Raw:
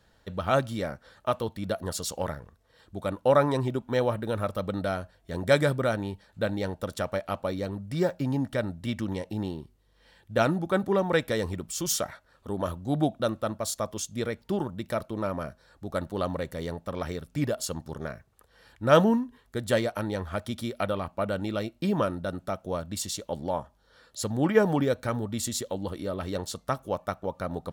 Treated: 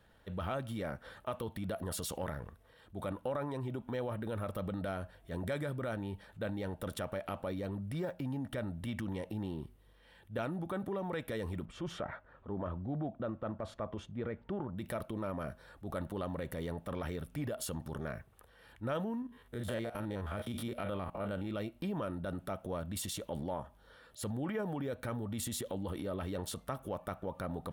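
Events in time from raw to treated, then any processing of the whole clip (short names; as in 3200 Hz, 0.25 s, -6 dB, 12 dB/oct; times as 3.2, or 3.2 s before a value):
11.65–14.78 LPF 1800 Hz
19.22–21.51 stepped spectrum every 50 ms
whole clip: band shelf 5600 Hz -8 dB 1.1 oct; transient shaper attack -6 dB, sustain +5 dB; compressor 6:1, threshold -33 dBFS; gain -1.5 dB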